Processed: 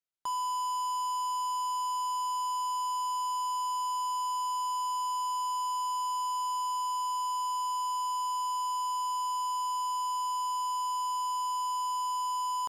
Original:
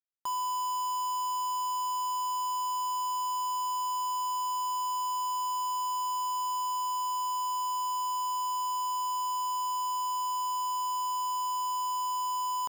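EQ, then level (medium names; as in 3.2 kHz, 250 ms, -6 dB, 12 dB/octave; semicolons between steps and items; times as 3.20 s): distance through air 94 m; treble shelf 7.1 kHz +4 dB; peaking EQ 13 kHz +15 dB 0.81 oct; 0.0 dB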